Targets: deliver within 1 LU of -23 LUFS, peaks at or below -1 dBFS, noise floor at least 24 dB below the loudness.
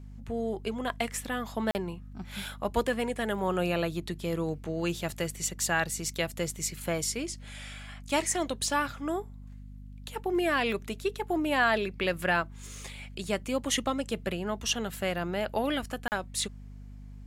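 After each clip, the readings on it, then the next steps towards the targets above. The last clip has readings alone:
dropouts 2; longest dropout 39 ms; hum 50 Hz; highest harmonic 250 Hz; hum level -42 dBFS; loudness -31.0 LUFS; peak level -14.0 dBFS; loudness target -23.0 LUFS
-> interpolate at 1.71/16.08 s, 39 ms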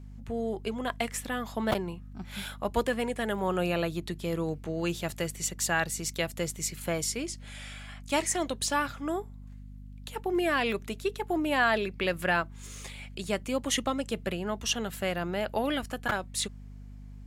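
dropouts 0; hum 50 Hz; highest harmonic 250 Hz; hum level -42 dBFS
-> de-hum 50 Hz, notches 5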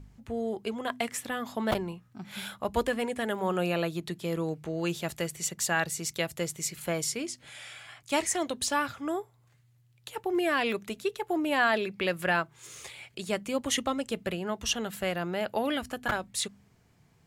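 hum not found; loudness -31.0 LUFS; peak level -11.0 dBFS; loudness target -23.0 LUFS
-> trim +8 dB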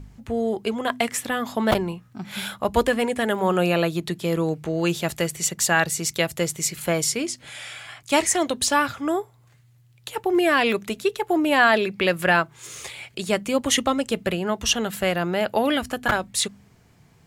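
loudness -23.0 LUFS; peak level -3.0 dBFS; noise floor -56 dBFS

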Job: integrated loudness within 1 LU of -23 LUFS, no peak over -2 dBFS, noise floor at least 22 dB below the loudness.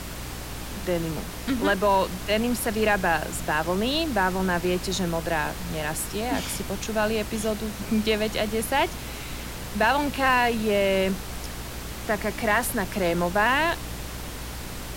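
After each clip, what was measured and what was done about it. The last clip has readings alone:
hum 60 Hz; highest harmonic 300 Hz; hum level -37 dBFS; noise floor -36 dBFS; noise floor target -48 dBFS; loudness -25.5 LUFS; peak level -10.5 dBFS; loudness target -23.0 LUFS
-> de-hum 60 Hz, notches 5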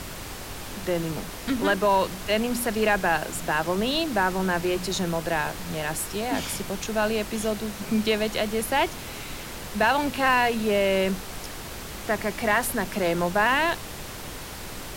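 hum not found; noise floor -38 dBFS; noise floor target -48 dBFS
-> noise print and reduce 10 dB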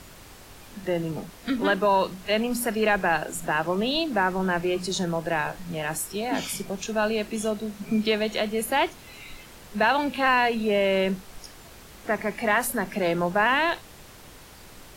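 noise floor -47 dBFS; noise floor target -48 dBFS
-> noise print and reduce 6 dB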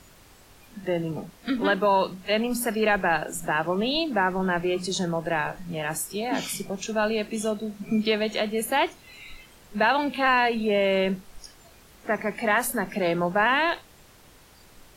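noise floor -53 dBFS; loudness -25.5 LUFS; peak level -11.0 dBFS; loudness target -23.0 LUFS
-> trim +2.5 dB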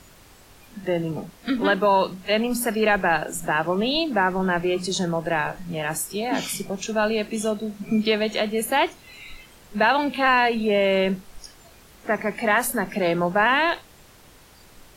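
loudness -23.0 LUFS; peak level -8.5 dBFS; noise floor -51 dBFS

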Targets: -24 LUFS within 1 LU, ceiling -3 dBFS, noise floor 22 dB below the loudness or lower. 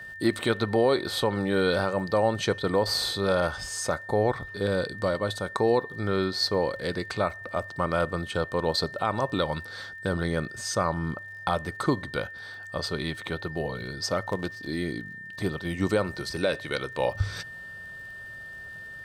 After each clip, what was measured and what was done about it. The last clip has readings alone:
tick rate 43 per s; steady tone 1.8 kHz; tone level -39 dBFS; loudness -28.0 LUFS; peak level -12.0 dBFS; loudness target -24.0 LUFS
-> de-click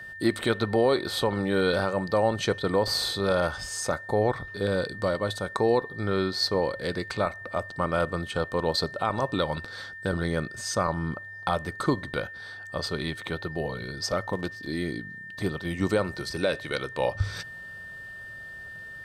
tick rate 0.16 per s; steady tone 1.8 kHz; tone level -39 dBFS
-> band-stop 1.8 kHz, Q 30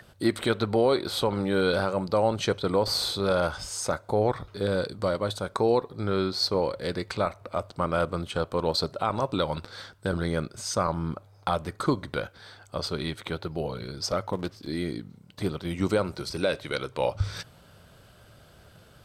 steady tone not found; loudness -28.5 LUFS; peak level -12.0 dBFS; loudness target -24.0 LUFS
-> trim +4.5 dB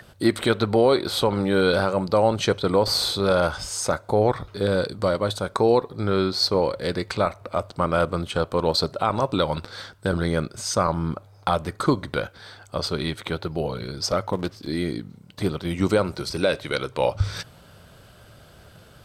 loudness -24.0 LUFS; peak level -7.5 dBFS; noise floor -51 dBFS

